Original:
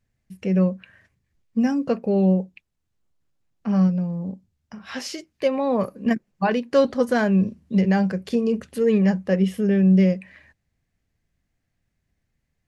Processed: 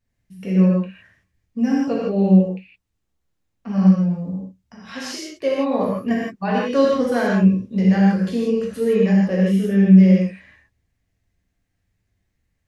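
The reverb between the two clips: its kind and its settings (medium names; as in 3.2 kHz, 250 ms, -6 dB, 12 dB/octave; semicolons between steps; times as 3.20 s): gated-style reverb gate 190 ms flat, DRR -5.5 dB; trim -4.5 dB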